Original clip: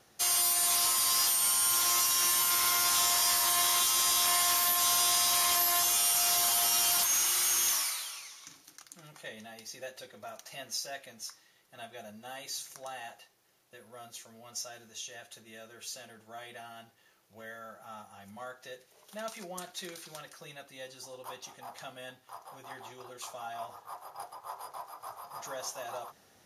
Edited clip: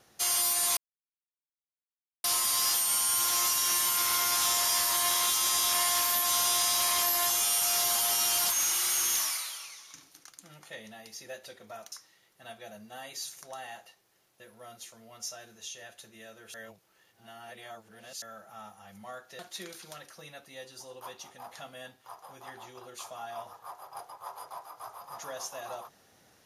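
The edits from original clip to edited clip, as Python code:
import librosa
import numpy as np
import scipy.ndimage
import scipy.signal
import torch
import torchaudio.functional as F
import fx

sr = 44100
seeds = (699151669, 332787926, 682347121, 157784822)

y = fx.edit(x, sr, fx.insert_silence(at_s=0.77, length_s=1.47),
    fx.cut(start_s=10.45, length_s=0.8),
    fx.reverse_span(start_s=15.87, length_s=1.68),
    fx.cut(start_s=18.72, length_s=0.9), tone=tone)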